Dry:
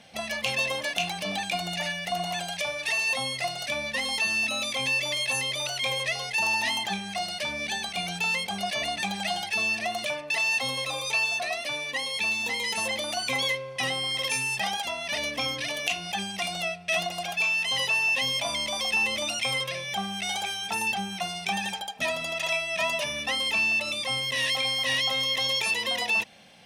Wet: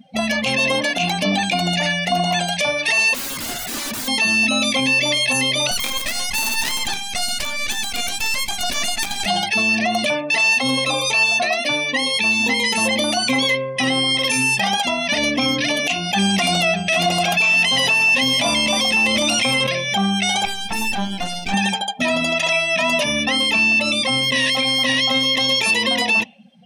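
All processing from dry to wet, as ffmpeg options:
-filter_complex "[0:a]asettb=1/sr,asplit=3[s0][s1][s2];[s0]atrim=end=3.144[s3];[s1]atrim=start=3.14:end=4.08,asetpts=PTS-STARTPTS,afade=t=in:d=0.004:c=qsin,afade=t=out:st=0.936:d=0.004:c=qsin,highpass=f=42:w=0.5412,highpass=f=42:w=1.3066,aeval=exprs='(mod(35.5*val(0)+1,2)-1)/35.5':c=same[s4];[s2]atrim=start=4.076[s5];[s3][s4]acrossfade=d=0.004:c1=hsin:c2=qsin[s6];[s6][s5]acrossfade=d=0.004:c1=qsin:c2=hsin,asettb=1/sr,asplit=3[s7][s8][s9];[s7]atrim=end=5.714[s10];[s8]atrim=start=5.71:end=9.26,asetpts=PTS-STARTPTS,afade=t=in:d=0.004:c=qsin,afade=t=out:st=3.546:d=0.004:c=qsin,highpass=730,highshelf=f=4200:g=10.5,acrusher=bits=4:dc=4:mix=0:aa=0.000001[s11];[s9]atrim=start=9.256[s12];[s10][s11]acrossfade=d=0.004:c1=hsin:c2=qsin[s13];[s13][s12]acrossfade=d=0.004:c1=qsin:c2=hsin,asettb=1/sr,asplit=3[s14][s15][s16];[s14]atrim=end=16.164[s17];[s15]atrim=start=16.16:end=19.67,asetpts=PTS-STARTPTS,afade=t=in:d=0.004:c=qsin,afade=t=out:st=3.506:d=0.004:c=qsin,aecho=1:1:573:0.168,atrim=end_sample=154791,acontrast=65[s18];[s16]atrim=start=19.666[s19];[s17][s18]acrossfade=d=0.004:c1=hsin:c2=qsin[s20];[s20][s19]acrossfade=d=0.004:c1=qsin:c2=hsin,asettb=1/sr,asplit=3[s21][s22][s23];[s21]atrim=end=20.454[s24];[s22]atrim=start=20.45:end=21.54,asetpts=PTS-STARTPTS,afade=t=in:d=0.004:c=qsin,afade=t=out:st=1.086:d=0.004:c=qsin,bandreject=f=270.7:t=h:w=4,bandreject=f=541.4:t=h:w=4,bandreject=f=812.1:t=h:w=4,bandreject=f=1082.8:t=h:w=4,bandreject=f=1353.5:t=h:w=4,bandreject=f=1624.2:t=h:w=4,bandreject=f=1894.9:t=h:w=4,bandreject=f=2165.6:t=h:w=4,bandreject=f=2436.3:t=h:w=4,bandreject=f=2707:t=h:w=4,bandreject=f=2977.7:t=h:w=4,bandreject=f=3248.4:t=h:w=4,bandreject=f=3519.1:t=h:w=4,bandreject=f=3789.8:t=h:w=4,bandreject=f=4060.5:t=h:w=4,bandreject=f=4331.2:t=h:w=4,bandreject=f=4601.9:t=h:w=4,bandreject=f=4872.6:t=h:w=4,bandreject=f=5143.3:t=h:w=4,bandreject=f=5414:t=h:w=4,bandreject=f=5684.7:t=h:w=4,bandreject=f=5955.4:t=h:w=4,bandreject=f=6226.1:t=h:w=4,bandreject=f=6496.8:t=h:w=4,bandreject=f=6767.5:t=h:w=4,bandreject=f=7038.2:t=h:w=4,bandreject=f=7308.9:t=h:w=4,bandreject=f=7579.6:t=h:w=4,asoftclip=type=hard:threshold=0.0531,acrusher=bits=4:dc=4:mix=0:aa=0.000001[s25];[s23]atrim=start=21.536[s26];[s24][s25]acrossfade=d=0.004:c1=hsin:c2=qsin[s27];[s27][s26]acrossfade=d=0.004:c1=qsin:c2=hsin,afftdn=nr=25:nf=-44,equalizer=f=250:w=2.2:g=13,alimiter=level_in=9.44:limit=0.891:release=50:level=0:latency=1,volume=0.376"

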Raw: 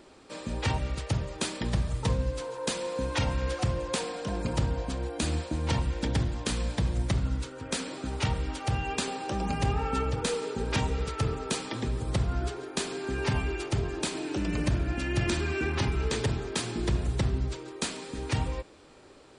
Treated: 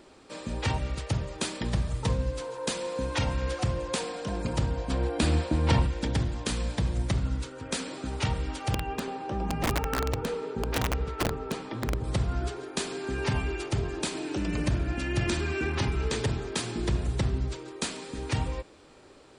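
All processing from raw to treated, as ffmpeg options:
-filter_complex "[0:a]asettb=1/sr,asplit=3[s0][s1][s2];[s0]atrim=end=4.904[s3];[s1]atrim=start=4.9:end=5.87,asetpts=PTS-STARTPTS,afade=t=in:d=0.004:c=qsin,afade=t=out:st=0.966:d=0.004:c=qsin,highshelf=f=5300:g=-7.5,bandreject=f=6400:w=9.6,acontrast=31[s4];[s2]atrim=start=5.866[s5];[s3][s4]acrossfade=d=0.004:c1=hsin:c2=qsin[s6];[s6][s5]acrossfade=d=0.004:c1=qsin:c2=hsin,asettb=1/sr,asplit=3[s7][s8][s9];[s7]atrim=end=8.744[s10];[s8]atrim=start=8.74:end=12.04,asetpts=PTS-STARTPTS,afade=t=in:d=0.004:c=qsin,afade=t=out:st=3.296:d=0.004:c=qsin,lowpass=f=1400:p=1,asplit=2[s11][s12];[s12]adelay=18,volume=0.2[s13];[s11][s13]amix=inputs=2:normalize=0,atrim=end_sample=145530,aeval=exprs='(mod(10.6*val(0)+1,2)-1)/10.6':c=same[s14];[s9]atrim=start=12.036[s15];[s10][s14]acrossfade=d=0.004:c1=hsin:c2=qsin[s16];[s16][s15]acrossfade=d=0.004:c1=qsin:c2=hsin"

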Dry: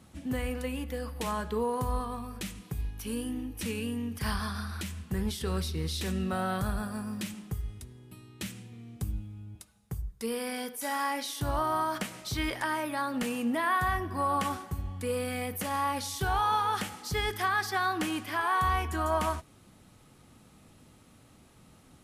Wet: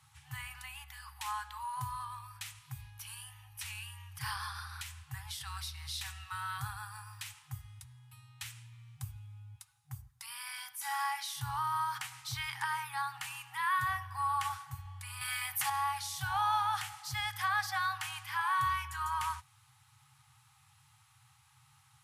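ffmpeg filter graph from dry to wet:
-filter_complex "[0:a]asettb=1/sr,asplit=3[s0][s1][s2];[s0]atrim=end=15.214[s3];[s1]atrim=start=15.21:end=15.7,asetpts=PTS-STARTPTS,afade=t=in:d=0.004:c=qsin,afade=t=out:st=0.486:d=0.004:c=qsin,highpass=f=130:w=0.5412,highpass=f=130:w=1.3066,acontrast=57,aecho=1:1:7.4:0.33,atrim=end_sample=21609[s4];[s2]atrim=start=15.696[s5];[s3][s4]acrossfade=d=0.004:c1=hsin:c2=qsin[s6];[s6][s5]acrossfade=d=0.004:c1=qsin:c2=hsin,afftfilt=real='re*(1-between(b*sr/4096,150,760))':imag='im*(1-between(b*sr/4096,150,760))':win_size=4096:overlap=0.75,highpass=f=99:w=0.5412,highpass=f=99:w=1.3066,volume=0.708"

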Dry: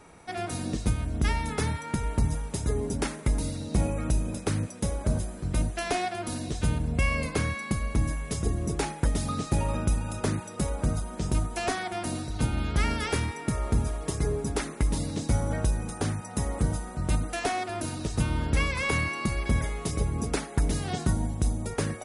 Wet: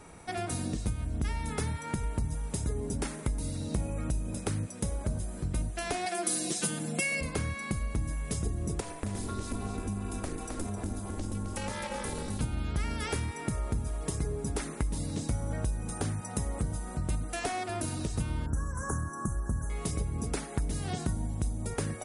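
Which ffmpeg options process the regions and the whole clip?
-filter_complex "[0:a]asettb=1/sr,asplit=3[s0][s1][s2];[s0]atrim=end=6.064[s3];[s1]atrim=start=6.06:end=7.21,asetpts=PTS-STARTPTS,afade=t=in:d=0.004:c=qsin,afade=t=out:st=1.146:d=0.004:c=qsin,highpass=f=200:w=0.5412,highpass=f=200:w=1.3066,highshelf=f=4200:g=11,aecho=1:1:5.9:0.9,atrim=end_sample=50715[s4];[s2]atrim=start=7.206[s5];[s3][s4]acrossfade=d=0.004:c1=hsin:c2=qsin[s6];[s6][s5]acrossfade=d=0.004:c1=qsin:c2=hsin,asettb=1/sr,asplit=3[s7][s8][s9];[s7]atrim=end=8.804[s10];[s8]atrim=start=8.8:end=12.41,asetpts=PTS-STARTPTS,afade=t=in:d=0.004:c=qsin,afade=t=out:st=3.606:d=0.004:c=qsin,acompressor=threshold=0.0355:ratio=3:attack=3.2:release=140:knee=1:detection=peak,aeval=exprs='val(0)*sin(2*PI*150*n/s)':c=same,aecho=1:1:263:0.531,atrim=end_sample=159201[s11];[s9]atrim=start=12.406[s12];[s10][s11]acrossfade=d=0.004:c1=hsin:c2=qsin[s13];[s13][s12]acrossfade=d=0.004:c1=qsin:c2=hsin,asettb=1/sr,asplit=3[s14][s15][s16];[s14]atrim=end=18.464[s17];[s15]atrim=start=18.46:end=19.7,asetpts=PTS-STARTPTS,afade=t=in:d=0.004:c=qsin,afade=t=out:st=1.236:d=0.004:c=qsin,asuperstop=centerf=3200:order=20:qfactor=0.79,equalizer=f=520:t=o:w=1.1:g=-6.5[s18];[s16]atrim=start=19.696[s19];[s17][s18]acrossfade=d=0.004:c1=hsin:c2=qsin[s20];[s20][s19]acrossfade=d=0.004:c1=qsin:c2=hsin,lowshelf=f=190:g=4.5,acompressor=threshold=0.0282:ratio=3,equalizer=f=8900:t=o:w=0.71:g=5.5"

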